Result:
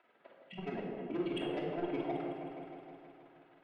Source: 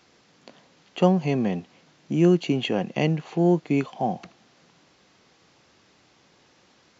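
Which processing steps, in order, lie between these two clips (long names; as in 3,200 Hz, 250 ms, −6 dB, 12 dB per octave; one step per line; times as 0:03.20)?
Chebyshev band-pass filter 140–3,500 Hz, order 3
reverb reduction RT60 0.87 s
time-frequency box erased 0:00.86–0:01.12, 210–1,900 Hz
three-way crossover with the lows and the highs turned down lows −21 dB, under 390 Hz, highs −21 dB, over 2,300 Hz
notch filter 1,100 Hz, Q 7.6
downward compressor 3 to 1, threshold −33 dBFS, peak gain reduction 8.5 dB
phase-vocoder stretch with locked phases 0.52×
amplitude tremolo 19 Hz, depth 84%
soft clipping −35.5 dBFS, distortion −12 dB
echo whose low-pass opens from repeat to repeat 157 ms, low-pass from 750 Hz, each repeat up 1 octave, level −6 dB
rectangular room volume 1,600 cubic metres, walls mixed, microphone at 2.9 metres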